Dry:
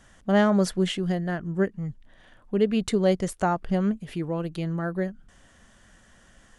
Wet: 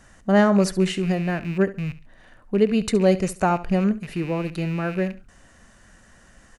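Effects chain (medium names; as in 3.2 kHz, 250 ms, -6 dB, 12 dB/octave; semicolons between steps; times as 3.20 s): rattle on loud lows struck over -39 dBFS, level -32 dBFS; band-stop 3.3 kHz, Q 5.9; feedback delay 69 ms, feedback 25%, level -16.5 dB; trim +3.5 dB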